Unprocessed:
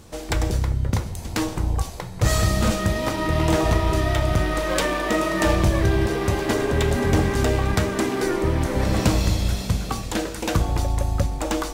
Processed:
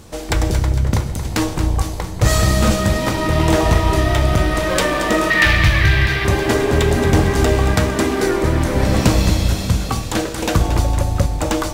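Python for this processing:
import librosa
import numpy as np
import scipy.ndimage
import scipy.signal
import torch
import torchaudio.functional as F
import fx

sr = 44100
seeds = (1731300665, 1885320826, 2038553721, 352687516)

y = fx.graphic_eq(x, sr, hz=(125, 250, 500, 1000, 2000, 4000, 8000), db=(4, -10, -10, -4, 12, 6, -8), at=(5.3, 6.25))
y = fx.echo_feedback(y, sr, ms=228, feedback_pct=53, wet_db=-10.0)
y = F.gain(torch.from_numpy(y), 5.0).numpy()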